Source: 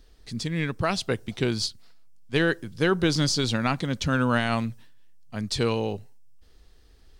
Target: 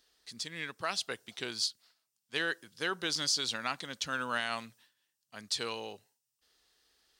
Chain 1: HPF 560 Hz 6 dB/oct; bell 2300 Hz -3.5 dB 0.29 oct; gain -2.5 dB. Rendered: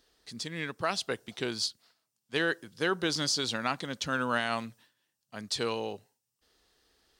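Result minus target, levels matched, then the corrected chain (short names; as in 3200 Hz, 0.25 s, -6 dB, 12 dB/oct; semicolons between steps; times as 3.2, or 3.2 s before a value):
500 Hz band +5.0 dB
HPF 1700 Hz 6 dB/oct; bell 2300 Hz -3.5 dB 0.29 oct; gain -2.5 dB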